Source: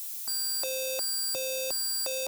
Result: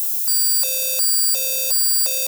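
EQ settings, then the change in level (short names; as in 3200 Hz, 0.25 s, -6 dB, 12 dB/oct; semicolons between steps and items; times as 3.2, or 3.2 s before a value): tilt +3.5 dB/oct; low shelf 120 Hz +10 dB; +2.0 dB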